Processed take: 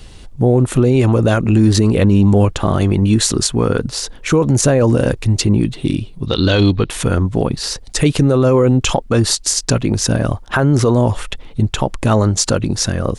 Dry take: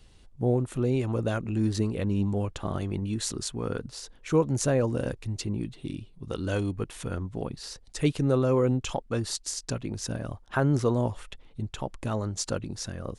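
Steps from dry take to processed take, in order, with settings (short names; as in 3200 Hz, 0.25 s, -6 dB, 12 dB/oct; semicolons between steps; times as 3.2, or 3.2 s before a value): 6.26–6.9 synth low-pass 3900 Hz, resonance Q 6.3; maximiser +21 dB; gain -3 dB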